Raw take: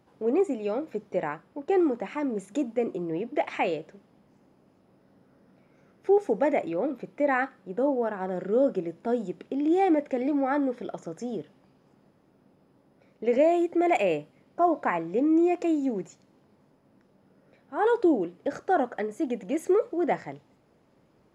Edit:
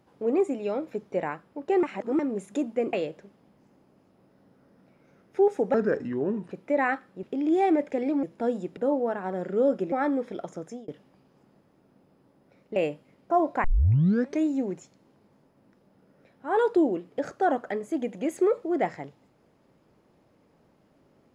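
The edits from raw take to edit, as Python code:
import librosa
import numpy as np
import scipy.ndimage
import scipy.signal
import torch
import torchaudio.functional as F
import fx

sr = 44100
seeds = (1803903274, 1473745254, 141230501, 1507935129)

y = fx.edit(x, sr, fx.reverse_span(start_s=1.83, length_s=0.36),
    fx.cut(start_s=2.93, length_s=0.7),
    fx.speed_span(start_s=6.44, length_s=0.57, speed=0.74),
    fx.swap(start_s=7.73, length_s=1.15, other_s=9.42, other_length_s=1.0),
    fx.fade_out_span(start_s=11.04, length_s=0.34, curve='qsin'),
    fx.cut(start_s=13.26, length_s=0.78),
    fx.tape_start(start_s=14.92, length_s=0.81), tone=tone)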